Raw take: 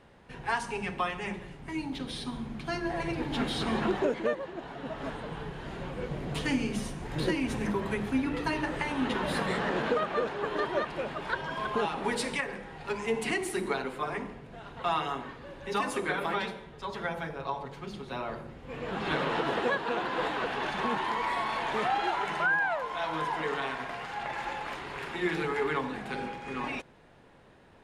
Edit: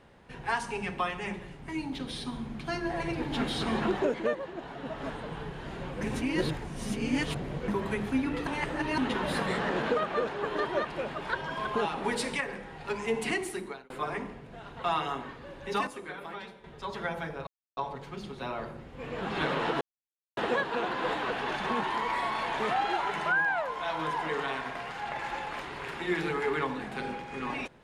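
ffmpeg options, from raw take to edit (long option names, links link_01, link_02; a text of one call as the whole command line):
ffmpeg -i in.wav -filter_complex "[0:a]asplit=10[link_01][link_02][link_03][link_04][link_05][link_06][link_07][link_08][link_09][link_10];[link_01]atrim=end=6.012[link_11];[link_02]atrim=start=6.008:end=7.682,asetpts=PTS-STARTPTS,areverse[link_12];[link_03]atrim=start=7.678:end=8.472[link_13];[link_04]atrim=start=8.468:end=8.982,asetpts=PTS-STARTPTS,areverse[link_14];[link_05]atrim=start=8.978:end=13.9,asetpts=PTS-STARTPTS,afade=type=out:start_time=4.372:duration=0.55[link_15];[link_06]atrim=start=13.9:end=15.872,asetpts=PTS-STARTPTS,afade=type=in:duration=0.004:curve=hsin[link_16];[link_07]atrim=start=15.868:end=16.642,asetpts=PTS-STARTPTS,volume=-10dB[link_17];[link_08]atrim=start=16.638:end=17.47,asetpts=PTS-STARTPTS,afade=type=out:start_time=0.828:duration=0.004:curve=hsin,apad=pad_dur=0.3[link_18];[link_09]atrim=start=17.47:end=19.51,asetpts=PTS-STARTPTS,afade=type=in:duration=0.004:curve=hsin,afade=type=out:start_time=2.036:duration=0.004:curve=hsin,apad=pad_dur=0.56[link_19];[link_10]atrim=start=19.51,asetpts=PTS-STARTPTS,afade=type=in:duration=0.004:curve=hsin[link_20];[link_11][link_12]acrossfade=duration=0.004:curve1=hsin:curve2=hsin[link_21];[link_21][link_13]acrossfade=duration=0.004:curve1=hsin:curve2=hsin[link_22];[link_22][link_14]acrossfade=duration=0.004:curve1=hsin:curve2=hsin[link_23];[link_15][link_16]concat=n=2:v=0:a=1[link_24];[link_23][link_24]acrossfade=duration=0.004:curve1=hsin:curve2=hsin[link_25];[link_25][link_17]acrossfade=duration=0.004:curve1=hsin:curve2=hsin[link_26];[link_18][link_19][link_20]concat=n=3:v=0:a=1[link_27];[link_26][link_27]acrossfade=duration=0.004:curve1=hsin:curve2=hsin" out.wav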